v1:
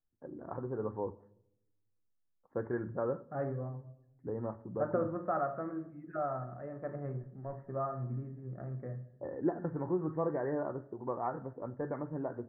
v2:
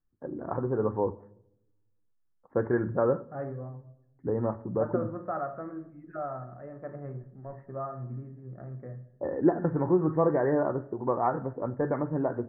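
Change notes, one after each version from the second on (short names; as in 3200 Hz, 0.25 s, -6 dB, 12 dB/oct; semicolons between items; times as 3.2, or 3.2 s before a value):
first voice +9.0 dB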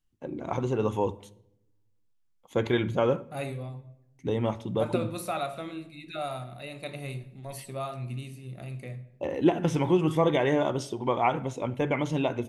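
master: remove rippled Chebyshev low-pass 1800 Hz, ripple 3 dB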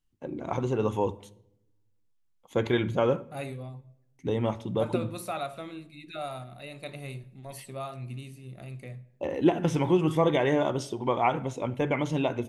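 second voice: send -7.5 dB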